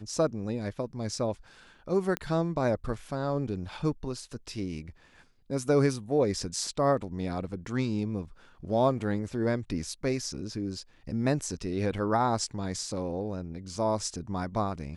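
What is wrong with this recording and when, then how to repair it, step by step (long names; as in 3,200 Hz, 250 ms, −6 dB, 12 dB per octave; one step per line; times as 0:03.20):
0:02.17: click −16 dBFS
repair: click removal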